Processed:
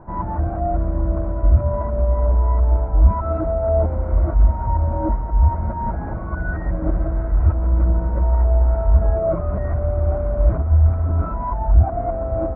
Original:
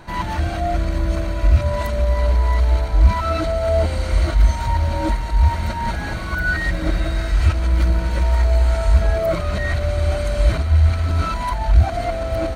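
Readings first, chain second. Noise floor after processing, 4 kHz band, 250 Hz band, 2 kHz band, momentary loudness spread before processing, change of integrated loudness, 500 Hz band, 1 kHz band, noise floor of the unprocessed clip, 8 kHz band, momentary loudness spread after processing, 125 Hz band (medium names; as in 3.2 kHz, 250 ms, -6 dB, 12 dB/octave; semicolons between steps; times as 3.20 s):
-26 dBFS, under -40 dB, 0.0 dB, -13.0 dB, 6 LU, -0.5 dB, 0.0 dB, -1.5 dB, -25 dBFS, under -40 dB, 7 LU, 0.0 dB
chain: low-pass 1.1 kHz 24 dB/octave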